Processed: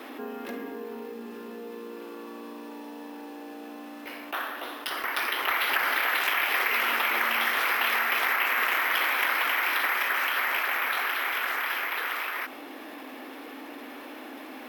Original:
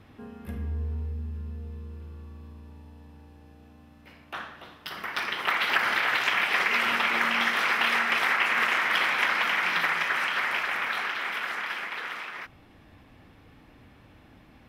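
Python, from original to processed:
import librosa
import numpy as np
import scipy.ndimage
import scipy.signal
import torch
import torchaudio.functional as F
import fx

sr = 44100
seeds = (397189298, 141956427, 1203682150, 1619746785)

y = scipy.signal.sosfilt(scipy.signal.ellip(4, 1.0, 40, 260.0, 'highpass', fs=sr, output='sos'), x)
y = np.repeat(y[::3], 3)[:len(y)]
y = fx.env_flatten(y, sr, amount_pct=50)
y = y * 10.0 ** (-2.0 / 20.0)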